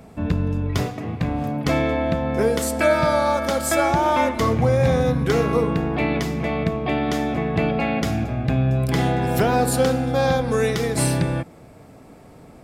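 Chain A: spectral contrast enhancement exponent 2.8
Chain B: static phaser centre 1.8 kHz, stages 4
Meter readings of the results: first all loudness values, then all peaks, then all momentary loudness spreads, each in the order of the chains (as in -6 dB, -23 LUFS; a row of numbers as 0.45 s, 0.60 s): -22.0 LUFS, -24.0 LUFS; -9.5 dBFS, -9.5 dBFS; 6 LU, 5 LU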